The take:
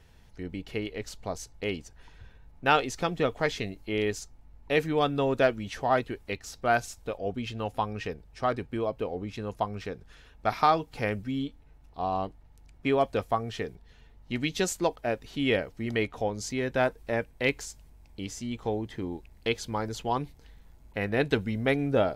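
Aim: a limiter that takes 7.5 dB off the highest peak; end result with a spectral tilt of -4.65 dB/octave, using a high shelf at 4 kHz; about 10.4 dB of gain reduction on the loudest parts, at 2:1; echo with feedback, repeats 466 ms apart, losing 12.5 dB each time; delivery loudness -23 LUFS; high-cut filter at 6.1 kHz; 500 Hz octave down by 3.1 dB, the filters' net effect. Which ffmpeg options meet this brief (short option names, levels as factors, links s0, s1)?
-af "lowpass=6100,equalizer=f=500:t=o:g=-4,highshelf=f=4000:g=5,acompressor=threshold=0.0126:ratio=2,alimiter=level_in=1.26:limit=0.0631:level=0:latency=1,volume=0.794,aecho=1:1:466|932|1398:0.237|0.0569|0.0137,volume=7.08"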